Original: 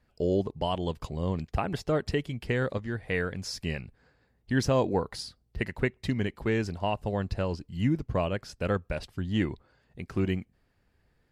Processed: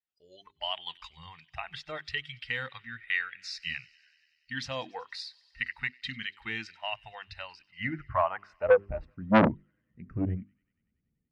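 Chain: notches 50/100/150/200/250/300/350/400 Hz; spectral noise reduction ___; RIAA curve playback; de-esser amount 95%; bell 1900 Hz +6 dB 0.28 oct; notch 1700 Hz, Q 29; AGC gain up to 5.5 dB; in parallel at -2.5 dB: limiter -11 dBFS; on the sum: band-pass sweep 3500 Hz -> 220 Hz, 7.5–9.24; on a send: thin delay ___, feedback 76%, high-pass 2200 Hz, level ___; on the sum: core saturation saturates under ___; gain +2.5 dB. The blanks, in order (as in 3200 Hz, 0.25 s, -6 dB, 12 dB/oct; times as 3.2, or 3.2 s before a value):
22 dB, 95 ms, -24 dB, 1200 Hz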